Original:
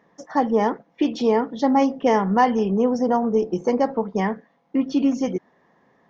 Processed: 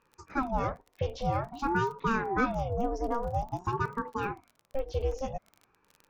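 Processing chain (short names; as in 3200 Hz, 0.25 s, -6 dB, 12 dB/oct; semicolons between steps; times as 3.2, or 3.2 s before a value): crackle 34/s -30 dBFS; ring modulator with a swept carrier 450 Hz, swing 55%, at 0.5 Hz; gain -7.5 dB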